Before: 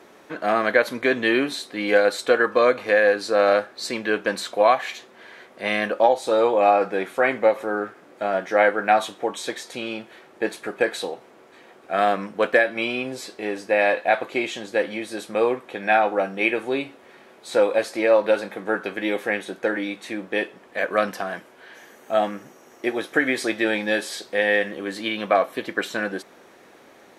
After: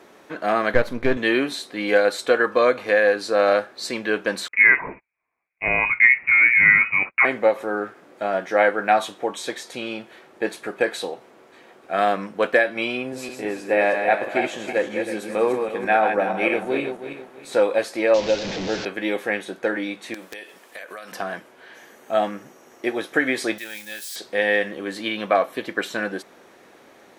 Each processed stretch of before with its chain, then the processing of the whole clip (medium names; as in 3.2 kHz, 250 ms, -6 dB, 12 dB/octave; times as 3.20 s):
0.74–1.17 s: partial rectifier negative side -7 dB + tilt EQ -2 dB/octave
4.48–7.25 s: gate -38 dBFS, range -37 dB + bass shelf 290 Hz +12 dB + frequency inversion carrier 2.7 kHz
12.97–17.53 s: backward echo that repeats 160 ms, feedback 54%, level -5.5 dB + peaking EQ 4 kHz -5 dB 1.3 oct
18.14–18.85 s: one-bit delta coder 32 kbps, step -20.5 dBFS + peaking EQ 1.3 kHz -10.5 dB 1 oct
20.14–21.12 s: RIAA curve recording + compression 16:1, threshold -32 dBFS + integer overflow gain 22.5 dB
23.58–24.16 s: zero-crossing glitches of -25 dBFS + amplifier tone stack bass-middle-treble 5-5-5
whole clip: none